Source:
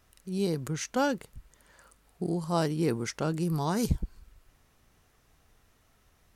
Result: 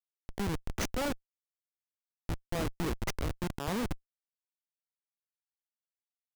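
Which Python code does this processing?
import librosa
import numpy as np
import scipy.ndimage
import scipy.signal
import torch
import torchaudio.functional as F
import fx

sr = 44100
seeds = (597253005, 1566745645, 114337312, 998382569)

p1 = fx.highpass(x, sr, hz=290.0, slope=6)
p2 = fx.peak_eq(p1, sr, hz=6100.0, db=4.0, octaves=0.22)
p3 = fx.rider(p2, sr, range_db=4, speed_s=2.0)
p4 = p2 + F.gain(torch.from_numpy(p3), -2.5).numpy()
y = fx.schmitt(p4, sr, flips_db=-24.5)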